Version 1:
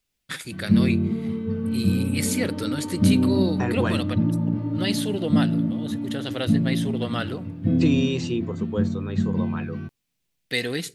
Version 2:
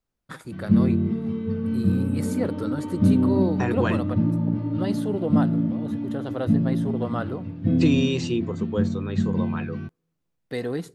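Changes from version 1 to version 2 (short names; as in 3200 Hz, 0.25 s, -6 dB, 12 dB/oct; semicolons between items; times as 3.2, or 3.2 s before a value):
first voice: add resonant high shelf 1600 Hz -13 dB, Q 1.5; second voice: send on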